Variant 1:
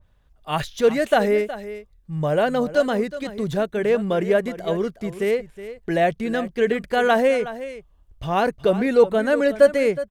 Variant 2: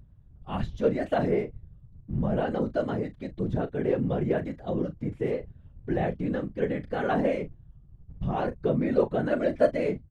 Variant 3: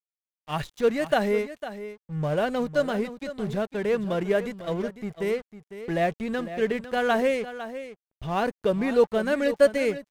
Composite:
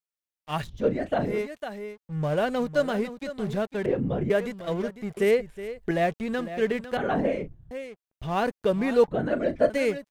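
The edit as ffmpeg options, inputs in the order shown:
-filter_complex "[1:a]asplit=4[s0][s1][s2][s3];[2:a]asplit=6[s4][s5][s6][s7][s8][s9];[s4]atrim=end=0.82[s10];[s0]atrim=start=0.58:end=1.45[s11];[s5]atrim=start=1.21:end=3.862[s12];[s1]atrim=start=3.858:end=4.302[s13];[s6]atrim=start=4.298:end=5.172[s14];[0:a]atrim=start=5.168:end=5.912[s15];[s7]atrim=start=5.908:end=6.972[s16];[s2]atrim=start=6.968:end=7.712[s17];[s8]atrim=start=7.708:end=9.082[s18];[s3]atrim=start=9.078:end=9.702[s19];[s9]atrim=start=9.698[s20];[s10][s11]acrossfade=d=0.24:c1=tri:c2=tri[s21];[s21][s12]acrossfade=d=0.24:c1=tri:c2=tri[s22];[s22][s13]acrossfade=d=0.004:c1=hsin:c2=hsin[s23];[s23][s14]acrossfade=d=0.004:c1=hsin:c2=hsin[s24];[s24][s15]acrossfade=d=0.004:c1=hsin:c2=hsin[s25];[s25][s16]acrossfade=d=0.004:c1=hsin:c2=hsin[s26];[s26][s17]acrossfade=d=0.004:c1=hsin:c2=hsin[s27];[s27][s18]acrossfade=d=0.004:c1=hsin:c2=hsin[s28];[s28][s19]acrossfade=d=0.004:c1=hsin:c2=hsin[s29];[s29][s20]acrossfade=d=0.004:c1=hsin:c2=hsin"

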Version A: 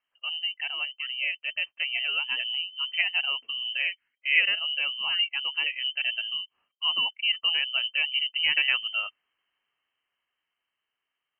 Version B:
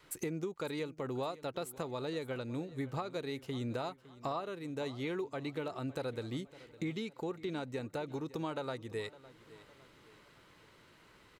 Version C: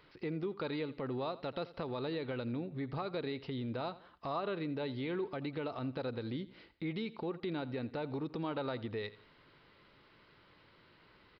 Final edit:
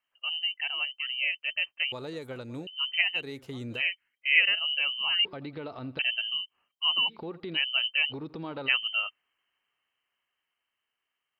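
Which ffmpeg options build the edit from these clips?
-filter_complex "[1:a]asplit=2[s0][s1];[2:a]asplit=3[s2][s3][s4];[0:a]asplit=6[s5][s6][s7][s8][s9][s10];[s5]atrim=end=1.922[s11];[s0]atrim=start=1.918:end=2.672[s12];[s6]atrim=start=2.668:end=3.23[s13];[s1]atrim=start=3.13:end=3.83[s14];[s7]atrim=start=3.73:end=5.252[s15];[s2]atrim=start=5.248:end=5.992[s16];[s8]atrim=start=5.988:end=7.11[s17];[s3]atrim=start=7.07:end=7.58[s18];[s9]atrim=start=7.54:end=8.13[s19];[s4]atrim=start=8.09:end=8.7[s20];[s10]atrim=start=8.66[s21];[s11][s12]acrossfade=d=0.004:c1=hsin:c2=hsin[s22];[s22][s13]acrossfade=d=0.004:c1=hsin:c2=hsin[s23];[s23][s14]acrossfade=d=0.1:c1=tri:c2=tri[s24];[s24][s15]acrossfade=d=0.1:c1=tri:c2=tri[s25];[s25][s16]acrossfade=d=0.004:c1=hsin:c2=hsin[s26];[s26][s17]acrossfade=d=0.004:c1=hsin:c2=hsin[s27];[s27][s18]acrossfade=d=0.04:c1=tri:c2=tri[s28];[s28][s19]acrossfade=d=0.04:c1=tri:c2=tri[s29];[s29][s20]acrossfade=d=0.04:c1=tri:c2=tri[s30];[s30][s21]acrossfade=d=0.04:c1=tri:c2=tri"

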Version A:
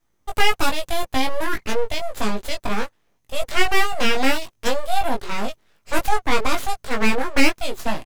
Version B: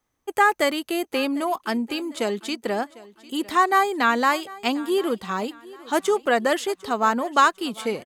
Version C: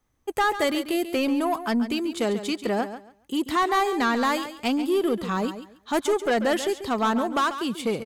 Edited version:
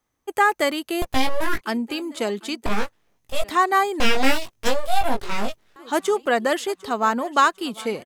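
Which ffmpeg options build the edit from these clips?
-filter_complex "[0:a]asplit=3[s0][s1][s2];[1:a]asplit=4[s3][s4][s5][s6];[s3]atrim=end=1.022[s7];[s0]atrim=start=1.018:end=1.612[s8];[s4]atrim=start=1.608:end=2.662[s9];[s1]atrim=start=2.658:end=3.442[s10];[s5]atrim=start=3.438:end=4.002[s11];[s2]atrim=start=3.998:end=5.762[s12];[s6]atrim=start=5.758[s13];[s7][s8]acrossfade=d=0.004:c1=hsin:c2=hsin[s14];[s14][s9]acrossfade=d=0.004:c1=hsin:c2=hsin[s15];[s15][s10]acrossfade=d=0.004:c1=hsin:c2=hsin[s16];[s16][s11]acrossfade=d=0.004:c1=hsin:c2=hsin[s17];[s17][s12]acrossfade=d=0.004:c1=hsin:c2=hsin[s18];[s18][s13]acrossfade=d=0.004:c1=hsin:c2=hsin"

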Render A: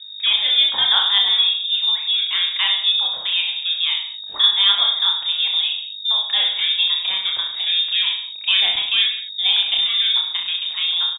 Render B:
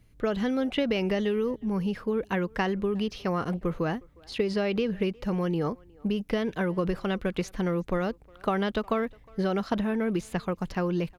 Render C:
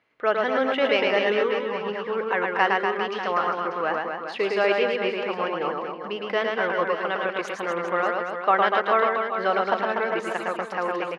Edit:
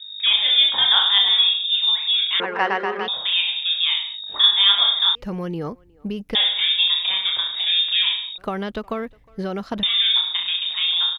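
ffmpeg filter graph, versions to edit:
-filter_complex "[1:a]asplit=2[s0][s1];[0:a]asplit=4[s2][s3][s4][s5];[s2]atrim=end=2.402[s6];[2:a]atrim=start=2.398:end=3.082[s7];[s3]atrim=start=3.078:end=5.152[s8];[s0]atrim=start=5.148:end=6.352[s9];[s4]atrim=start=6.348:end=8.382[s10];[s1]atrim=start=8.378:end=9.832[s11];[s5]atrim=start=9.828[s12];[s6][s7]acrossfade=d=0.004:c1=hsin:c2=hsin[s13];[s13][s8]acrossfade=d=0.004:c1=hsin:c2=hsin[s14];[s14][s9]acrossfade=d=0.004:c1=hsin:c2=hsin[s15];[s15][s10]acrossfade=d=0.004:c1=hsin:c2=hsin[s16];[s16][s11]acrossfade=d=0.004:c1=hsin:c2=hsin[s17];[s17][s12]acrossfade=d=0.004:c1=hsin:c2=hsin"

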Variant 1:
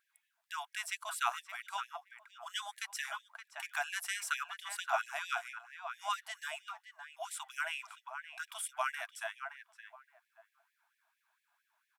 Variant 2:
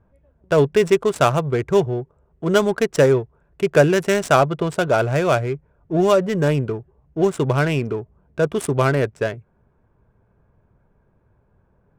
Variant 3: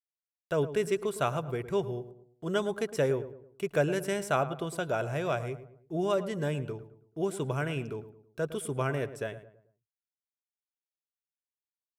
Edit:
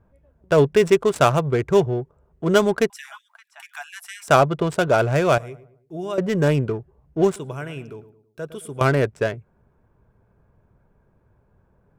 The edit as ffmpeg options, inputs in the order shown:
-filter_complex "[2:a]asplit=2[s0][s1];[1:a]asplit=4[s2][s3][s4][s5];[s2]atrim=end=2.902[s6];[0:a]atrim=start=2.898:end=4.282[s7];[s3]atrim=start=4.278:end=5.382[s8];[s0]atrim=start=5.378:end=6.182[s9];[s4]atrim=start=6.178:end=7.362[s10];[s1]atrim=start=7.358:end=8.812[s11];[s5]atrim=start=8.808[s12];[s6][s7]acrossfade=d=0.004:c1=hsin:c2=hsin[s13];[s13][s8]acrossfade=d=0.004:c1=hsin:c2=hsin[s14];[s14][s9]acrossfade=d=0.004:c1=hsin:c2=hsin[s15];[s15][s10]acrossfade=d=0.004:c1=hsin:c2=hsin[s16];[s16][s11]acrossfade=d=0.004:c1=hsin:c2=hsin[s17];[s17][s12]acrossfade=d=0.004:c1=hsin:c2=hsin"

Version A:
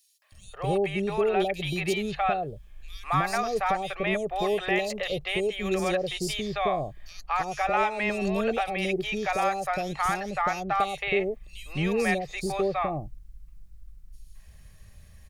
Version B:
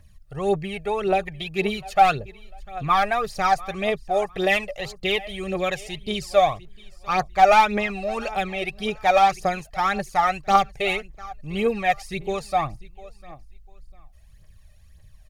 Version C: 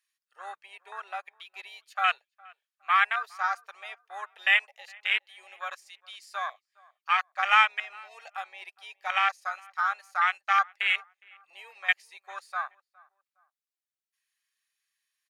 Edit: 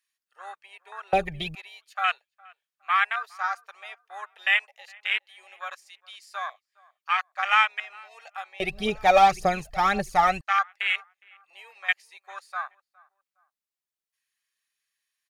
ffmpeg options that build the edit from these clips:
-filter_complex "[1:a]asplit=2[s0][s1];[2:a]asplit=3[s2][s3][s4];[s2]atrim=end=1.132[s5];[s0]atrim=start=1.128:end=1.552[s6];[s3]atrim=start=1.548:end=8.602[s7];[s1]atrim=start=8.598:end=10.412[s8];[s4]atrim=start=10.408[s9];[s5][s6]acrossfade=d=0.004:c1=hsin:c2=hsin[s10];[s10][s7]acrossfade=d=0.004:c1=hsin:c2=hsin[s11];[s11][s8]acrossfade=d=0.004:c1=hsin:c2=hsin[s12];[s12][s9]acrossfade=d=0.004:c1=hsin:c2=hsin"

